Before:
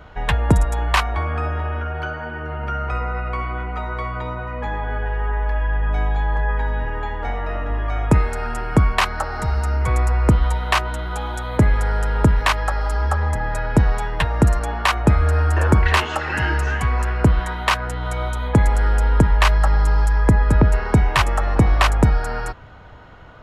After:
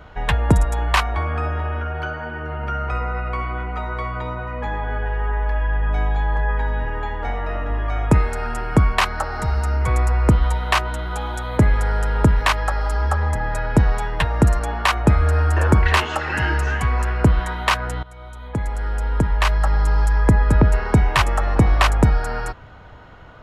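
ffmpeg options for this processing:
-filter_complex "[0:a]asplit=2[s0][s1];[s0]atrim=end=18.03,asetpts=PTS-STARTPTS,afade=t=out:st=18.026:d=0.004:c=hsin:silence=0.105925[s2];[s1]atrim=start=18.03,asetpts=PTS-STARTPTS,afade=t=in:d=2.1:silence=0.105925[s3];[s2][s3]concat=n=2:v=0:a=1"

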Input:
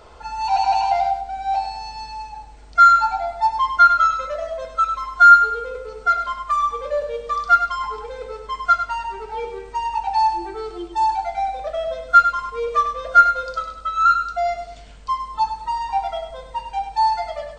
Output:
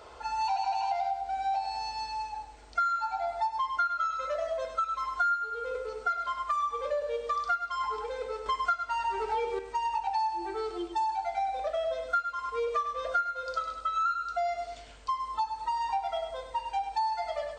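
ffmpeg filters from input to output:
-filter_complex "[0:a]asplit=3[s0][s1][s2];[s0]atrim=end=8.462[s3];[s1]atrim=start=8.458:end=9.592,asetpts=PTS-STARTPTS,volume=2.24[s4];[s2]atrim=start=9.588[s5];[s3][s4]acrossfade=d=0.004:c1=hsin:c2=hsin[s6];[s6][s5]acrossfade=d=0.004:c1=hsin:c2=hsin,highpass=f=120:p=1,equalizer=f=170:t=o:w=0.5:g=-15,acompressor=threshold=0.0562:ratio=6,volume=0.75"

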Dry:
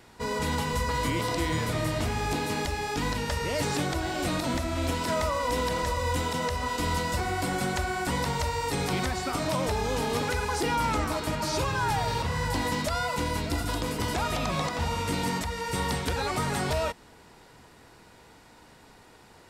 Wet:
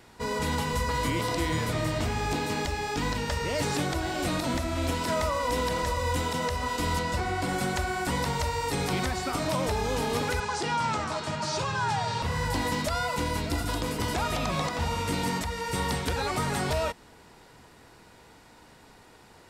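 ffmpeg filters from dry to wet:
-filter_complex "[0:a]asettb=1/sr,asplit=3[s0][s1][s2];[s0]atrim=end=1.714[s3];[s1]atrim=start=1.71:end=3.62,asetpts=PTS-STARTPTS,afade=t=in:d=0.004:c=qsin,afade=t=out:st=1.906:d=0.004:c=qsin,equalizer=f=11000:w=4.4:g=-11[s4];[s2]atrim=start=3.616[s5];[s3][s4]acrossfade=d=0.004:c1=hsin:c2=qsin[s6];[s6][s5]acrossfade=d=0.004:c1=qsin:c2=hsin,asettb=1/sr,asplit=3[s7][s8][s9];[s7]atrim=end=6.994[s10];[s8]atrim=start=6.99:end=7.49,asetpts=PTS-STARTPTS,afade=t=in:d=0.004:c=qsin,afade=t=out:st=0.496:d=0.004:c=qsin,highshelf=f=9100:g=-10.5[s11];[s9]atrim=start=7.486[s12];[s10][s11]acrossfade=d=0.004:c1=hsin:c2=qsin[s13];[s13][s12]acrossfade=d=0.004:c1=qsin:c2=hsin,asettb=1/sr,asplit=3[s14][s15][s16];[s14]atrim=end=10.404[s17];[s15]atrim=start=10.4:end=12.22,asetpts=PTS-STARTPTS,afade=t=in:d=0.004:c=qsin,afade=t=out:st=1.816:d=0.004:c=qsin,highpass=f=100:w=0.5412,highpass=f=100:w=1.3066,equalizer=f=290:t=q:w=4:g=-10,equalizer=f=480:t=q:w=4:g=-5,equalizer=f=2200:t=q:w=4:g=-3,lowpass=f=8100:w=0.5412,lowpass=f=8100:w=1.3066[s18];[s16]atrim=start=12.216[s19];[s17][s18]acrossfade=d=0.004:c1=hsin:c2=qsin[s20];[s20][s19]acrossfade=d=0.004:c1=qsin:c2=hsin"

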